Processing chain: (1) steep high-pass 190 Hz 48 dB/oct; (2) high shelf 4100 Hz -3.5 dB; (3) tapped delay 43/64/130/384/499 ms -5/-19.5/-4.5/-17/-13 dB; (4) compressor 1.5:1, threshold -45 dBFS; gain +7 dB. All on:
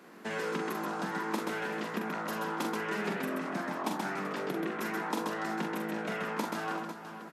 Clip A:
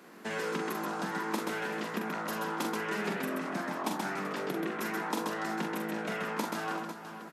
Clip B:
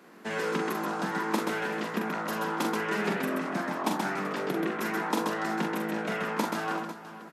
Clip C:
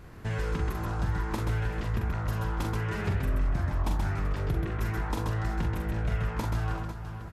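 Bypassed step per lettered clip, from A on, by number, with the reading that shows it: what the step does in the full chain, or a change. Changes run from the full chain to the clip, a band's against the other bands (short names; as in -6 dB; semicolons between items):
2, 8 kHz band +2.5 dB; 4, mean gain reduction 3.5 dB; 1, 125 Hz band +20.0 dB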